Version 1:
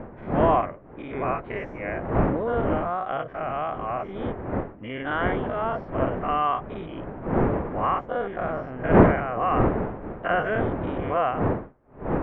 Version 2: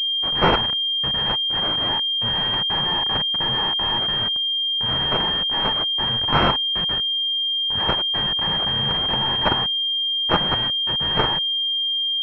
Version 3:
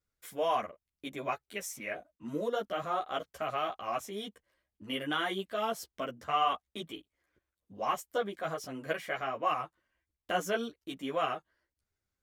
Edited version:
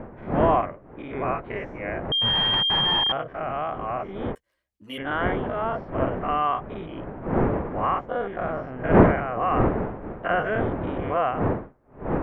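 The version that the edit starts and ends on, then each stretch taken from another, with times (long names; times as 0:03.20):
1
0:02.12–0:03.12: punch in from 2
0:04.35–0:04.98: punch in from 3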